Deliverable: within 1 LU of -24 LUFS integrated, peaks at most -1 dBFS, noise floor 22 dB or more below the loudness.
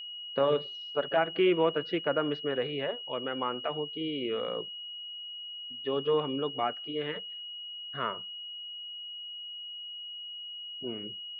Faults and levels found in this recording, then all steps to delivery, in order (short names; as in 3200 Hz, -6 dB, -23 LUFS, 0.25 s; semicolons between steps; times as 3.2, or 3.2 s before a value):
steady tone 2900 Hz; tone level -39 dBFS; loudness -32.5 LUFS; peak -14.0 dBFS; loudness target -24.0 LUFS
-> notch 2900 Hz, Q 30; gain +8.5 dB